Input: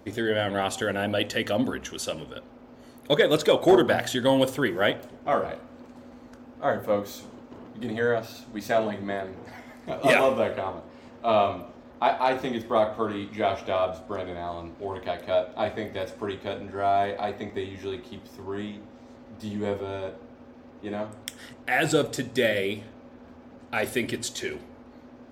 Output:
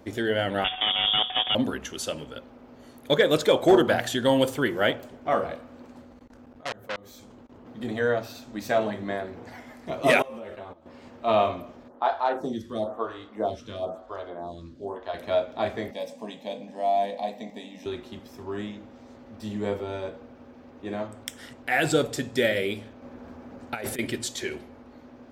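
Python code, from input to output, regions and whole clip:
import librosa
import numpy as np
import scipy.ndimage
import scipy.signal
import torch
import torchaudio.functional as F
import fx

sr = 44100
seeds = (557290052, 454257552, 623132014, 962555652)

y = fx.chain(x, sr, fx.sample_sort(block=16),
    fx.peak_eq(hz=120.0, db=9.5, octaves=1.9),
    fx.freq_invert(carrier_hz=3500), at=(0.64, 1.55))
y = fx.chain(y, sr, fx.low_shelf(hz=110.0, db=7.5),
    fx.level_steps(step_db=24),
    fx.transformer_sat(knee_hz=3800.0), at=(6.01, 7.67))
y = fx.chain(y, sr, fx.level_steps(step_db=18),
    fx.ensemble(), at=(10.22, 10.86))
y = fx.chain(y, sr, fx.lowpass(hz=9800.0, slope=12),
    fx.peak_eq(hz=2300.0, db=-10.5, octaves=0.6),
    fx.stagger_phaser(hz=1.0), at=(11.88, 15.14))
y = fx.chain(y, sr, fx.highpass(hz=130.0, slope=12),
    fx.fixed_phaser(hz=370.0, stages=6), at=(15.91, 17.86))
y = fx.chain(y, sr, fx.over_compress(threshold_db=-30.0, ratio=-0.5),
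    fx.peak_eq(hz=3200.0, db=-3.0, octaves=1.1), at=(23.02, 23.99))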